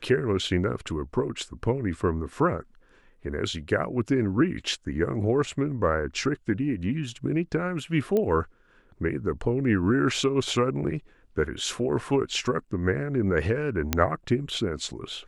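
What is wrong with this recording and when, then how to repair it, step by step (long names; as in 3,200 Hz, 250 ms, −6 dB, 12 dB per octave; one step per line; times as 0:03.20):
0:08.17: click −15 dBFS
0:13.93: click −6 dBFS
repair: click removal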